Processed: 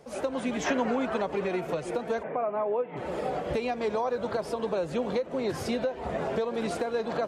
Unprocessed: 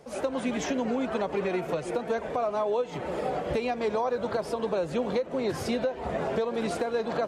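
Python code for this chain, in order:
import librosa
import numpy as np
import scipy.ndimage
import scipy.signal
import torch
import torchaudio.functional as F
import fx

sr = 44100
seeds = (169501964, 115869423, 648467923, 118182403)

y = fx.peak_eq(x, sr, hz=1300.0, db=fx.line((0.65, 12.0), (1.27, 1.0)), octaves=1.9, at=(0.65, 1.27), fade=0.02)
y = fx.ellip_bandpass(y, sr, low_hz=140.0, high_hz=2300.0, order=3, stop_db=40, at=(2.22, 2.96), fade=0.02)
y = y * librosa.db_to_amplitude(-1.0)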